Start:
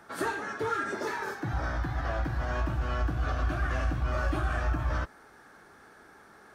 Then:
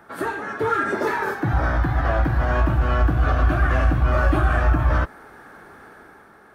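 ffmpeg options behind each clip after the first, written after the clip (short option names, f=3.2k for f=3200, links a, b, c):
-af "equalizer=f=5.9k:w=0.77:g=-10,dynaudnorm=f=110:g=11:m=6dB,volume=5dB"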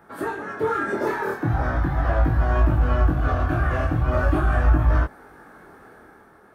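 -af "equalizer=f=3.3k:w=0.38:g=-5,flanger=delay=19:depth=6.8:speed=0.4,volume=2.5dB"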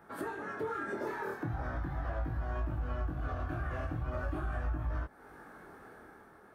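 -af "acompressor=threshold=-32dB:ratio=2.5,volume=-5.5dB"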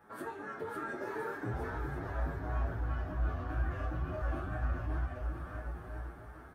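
-filter_complex "[0:a]asplit=2[a][b];[b]aecho=0:1:550|1018|1415|1753|2040:0.631|0.398|0.251|0.158|0.1[c];[a][c]amix=inputs=2:normalize=0,asplit=2[d][e];[e]adelay=8,afreqshift=2.9[f];[d][f]amix=inputs=2:normalize=1"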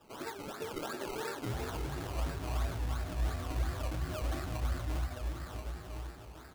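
-af "acrusher=samples=20:mix=1:aa=0.000001:lfo=1:lforange=12:lforate=2.9"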